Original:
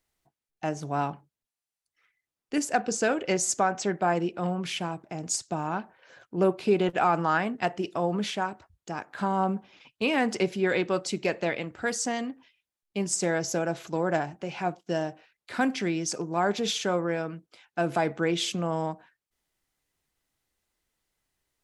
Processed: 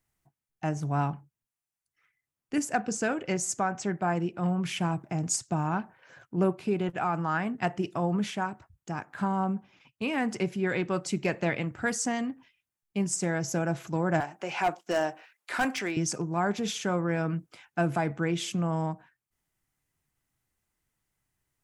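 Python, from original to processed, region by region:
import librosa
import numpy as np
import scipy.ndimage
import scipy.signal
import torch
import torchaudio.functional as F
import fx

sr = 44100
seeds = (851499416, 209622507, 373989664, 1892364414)

y = fx.chain(x, sr, fx.highpass(hz=470.0, slope=12),
    fx.clip_hard(threshold_db=-26.0), at=(14.2, 15.97))
y = fx.graphic_eq(y, sr, hz=(125, 500, 4000), db=(8, -5, -7))
y = fx.rider(y, sr, range_db=10, speed_s=0.5)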